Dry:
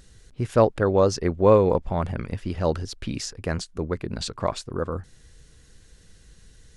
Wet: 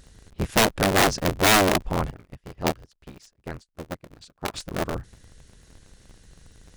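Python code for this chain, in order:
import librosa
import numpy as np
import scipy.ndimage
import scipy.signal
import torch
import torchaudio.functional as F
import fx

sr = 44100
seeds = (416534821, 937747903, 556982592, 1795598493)

y = fx.cycle_switch(x, sr, every=3, mode='inverted')
y = (np.mod(10.0 ** (11.0 / 20.0) * y + 1.0, 2.0) - 1.0) / 10.0 ** (11.0 / 20.0)
y = fx.upward_expand(y, sr, threshold_db=-37.0, expansion=2.5, at=(2.1, 4.54))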